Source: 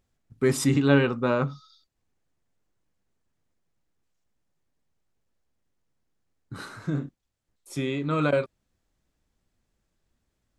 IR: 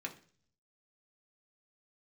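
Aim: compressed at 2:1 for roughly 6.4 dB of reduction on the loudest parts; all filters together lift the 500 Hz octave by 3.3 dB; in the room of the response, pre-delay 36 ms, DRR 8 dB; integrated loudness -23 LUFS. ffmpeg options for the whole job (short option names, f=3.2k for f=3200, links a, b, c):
-filter_complex "[0:a]equalizer=f=500:t=o:g=4,acompressor=threshold=-25dB:ratio=2,asplit=2[a][b];[1:a]atrim=start_sample=2205,adelay=36[c];[b][c]afir=irnorm=-1:irlink=0,volume=-8dB[d];[a][d]amix=inputs=2:normalize=0,volume=4.5dB"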